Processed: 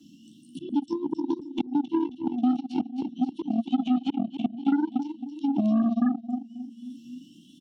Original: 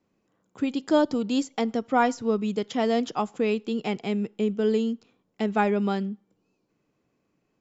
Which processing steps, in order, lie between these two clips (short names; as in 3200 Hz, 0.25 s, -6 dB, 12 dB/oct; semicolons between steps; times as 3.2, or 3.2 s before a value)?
repeated pitch sweeps +6 st, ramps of 0.696 s; high shelf 2600 Hz +6.5 dB; treble ducked by the level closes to 550 Hz, closed at -22 dBFS; brick-wall FIR band-stop 330–2700 Hz; reverb, pre-delay 3 ms, DRR -3.5 dB; auto swell 0.254 s; HPF 95 Hz 6 dB/oct; feedback echo 0.268 s, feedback 33%, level -8 dB; added harmonics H 7 -19 dB, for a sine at -8 dBFS; three-band squash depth 100%; gain -2 dB